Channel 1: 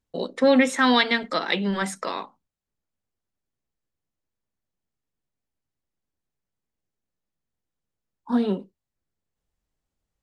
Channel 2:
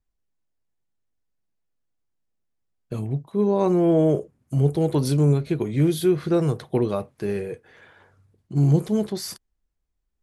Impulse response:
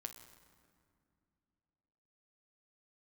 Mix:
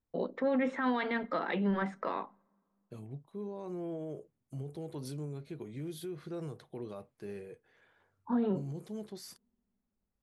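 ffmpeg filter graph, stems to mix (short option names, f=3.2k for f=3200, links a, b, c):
-filter_complex "[0:a]lowpass=1.7k,volume=-5dB,asplit=2[a][b];[b]volume=-22.5dB[c];[1:a]highpass=f=110:p=1,alimiter=limit=-17dB:level=0:latency=1:release=68,volume=-16dB[d];[2:a]atrim=start_sample=2205[e];[c][e]afir=irnorm=-1:irlink=0[f];[a][d][f]amix=inputs=3:normalize=0,alimiter=limit=-23dB:level=0:latency=1:release=18"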